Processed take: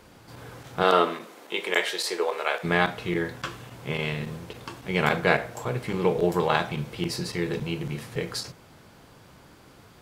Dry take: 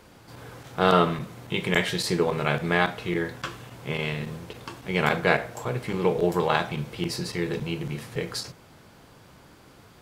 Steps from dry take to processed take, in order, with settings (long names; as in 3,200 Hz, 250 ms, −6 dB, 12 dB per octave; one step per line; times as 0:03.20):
0:00.82–0:02.63: high-pass filter 240 Hz → 490 Hz 24 dB per octave